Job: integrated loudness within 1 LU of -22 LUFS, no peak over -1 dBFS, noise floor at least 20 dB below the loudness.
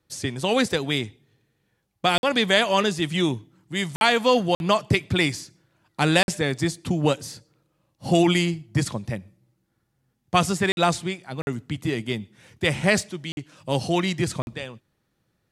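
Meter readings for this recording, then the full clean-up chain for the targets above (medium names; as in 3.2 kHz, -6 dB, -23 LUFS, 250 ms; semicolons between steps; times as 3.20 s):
dropouts 8; longest dropout 51 ms; loudness -23.5 LUFS; peak level -4.5 dBFS; loudness target -22.0 LUFS
-> interpolate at 2.18/3.96/4.55/6.23/10.72/11.42/13.32/14.42 s, 51 ms; trim +1.5 dB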